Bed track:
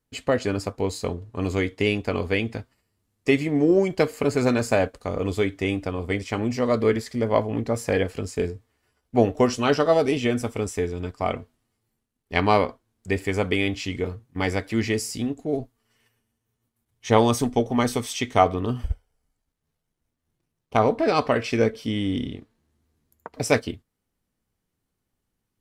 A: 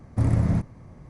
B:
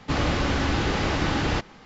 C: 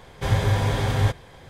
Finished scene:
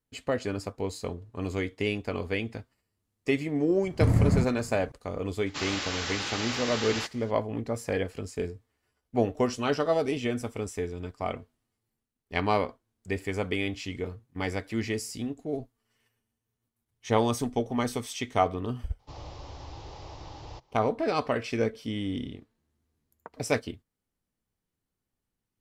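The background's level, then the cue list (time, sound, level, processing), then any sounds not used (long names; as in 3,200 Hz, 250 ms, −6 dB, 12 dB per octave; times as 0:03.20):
bed track −6.5 dB
0:03.83: mix in A −1 dB
0:05.46: mix in B −9 dB + spectral tilt +4.5 dB per octave
0:18.99: mix in B −16.5 dB + drawn EQ curve 130 Hz 0 dB, 210 Hz −19 dB, 320 Hz −6 dB, 940 Hz +2 dB, 1,500 Hz −15 dB, 5,400 Hz +1 dB, 9,500 Hz −10 dB
not used: C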